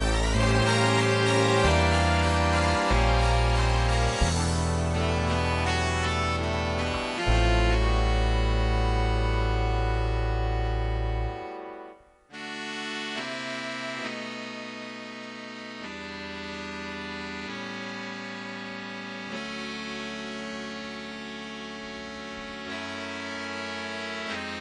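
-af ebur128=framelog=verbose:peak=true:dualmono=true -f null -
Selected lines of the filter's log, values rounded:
Integrated loudness:
  I:         -24.5 LUFS
  Threshold: -34.7 LUFS
Loudness range:
  LRA:        12.5 LU
  Threshold: -45.2 LUFS
  LRA low:   -32.5 LUFS
  LRA high:  -20.0 LUFS
True peak:
  Peak:       -8.8 dBFS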